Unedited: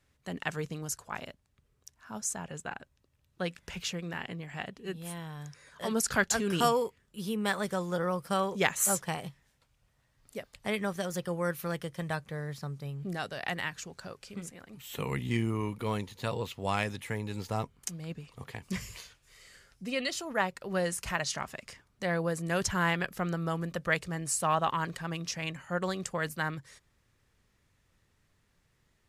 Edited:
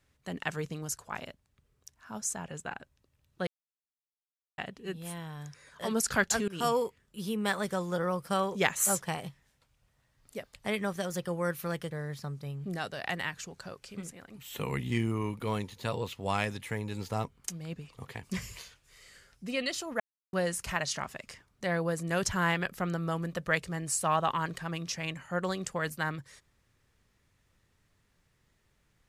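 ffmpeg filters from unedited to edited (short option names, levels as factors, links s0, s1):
-filter_complex "[0:a]asplit=7[s0][s1][s2][s3][s4][s5][s6];[s0]atrim=end=3.47,asetpts=PTS-STARTPTS,afade=t=out:st=3.466:d=0.004:c=hsin[s7];[s1]atrim=start=3.47:end=4.58,asetpts=PTS-STARTPTS,volume=0[s8];[s2]atrim=start=4.58:end=6.48,asetpts=PTS-STARTPTS,afade=t=in:d=0.004:c=hsin,afade=t=out:st=1.896:d=0.004:c=hsin:silence=0.0891251[s9];[s3]atrim=start=6.48:end=11.912,asetpts=PTS-STARTPTS,afade=t=in:d=0.28:silence=0.0891251[s10];[s4]atrim=start=12.298:end=20.39,asetpts=PTS-STARTPTS,afade=t=out:st=8.088:d=0.004:c=hsin[s11];[s5]atrim=start=20.39:end=20.72,asetpts=PTS-STARTPTS,volume=0[s12];[s6]atrim=start=20.72,asetpts=PTS-STARTPTS,afade=t=in:d=0.004:c=hsin[s13];[s7][s8][s9][s10]concat=n=4:v=0:a=1[s14];[s11][s12][s13]concat=n=3:v=0:a=1[s15];[s14][s15]acrossfade=d=0.004:c1=hsin:c2=hsin"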